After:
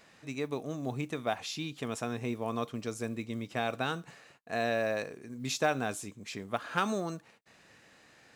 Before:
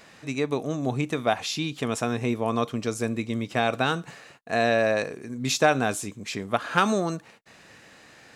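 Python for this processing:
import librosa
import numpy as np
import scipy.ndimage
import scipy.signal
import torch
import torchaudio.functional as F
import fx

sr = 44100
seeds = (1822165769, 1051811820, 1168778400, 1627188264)

y = fx.mod_noise(x, sr, seeds[0], snr_db=34)
y = y * 10.0 ** (-8.5 / 20.0)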